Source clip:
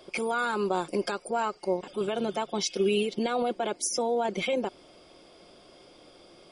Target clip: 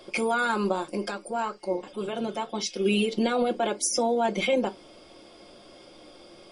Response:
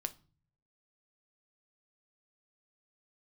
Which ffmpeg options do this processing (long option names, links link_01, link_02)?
-filter_complex "[0:a]asplit=3[link_01][link_02][link_03];[link_01]afade=type=out:start_time=0.71:duration=0.02[link_04];[link_02]flanger=delay=2:depth=4.5:regen=-82:speed=1.9:shape=triangular,afade=type=in:start_time=0.71:duration=0.02,afade=type=out:start_time=2.84:duration=0.02[link_05];[link_03]afade=type=in:start_time=2.84:duration=0.02[link_06];[link_04][link_05][link_06]amix=inputs=3:normalize=0[link_07];[1:a]atrim=start_sample=2205,afade=type=out:start_time=0.17:duration=0.01,atrim=end_sample=7938,asetrate=74970,aresample=44100[link_08];[link_07][link_08]afir=irnorm=-1:irlink=0,volume=8.5dB"